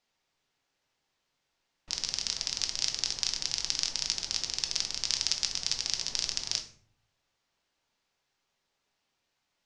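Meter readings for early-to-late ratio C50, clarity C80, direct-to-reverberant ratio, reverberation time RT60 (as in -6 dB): 10.5 dB, 14.5 dB, 4.0 dB, 0.50 s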